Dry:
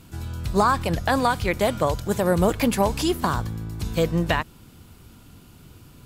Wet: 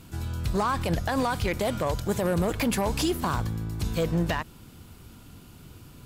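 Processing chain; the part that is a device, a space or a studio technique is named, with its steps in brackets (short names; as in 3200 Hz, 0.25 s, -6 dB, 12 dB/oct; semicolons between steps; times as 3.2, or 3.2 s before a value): limiter into clipper (limiter -16 dBFS, peak gain reduction 7.5 dB; hard clip -19.5 dBFS, distortion -19 dB)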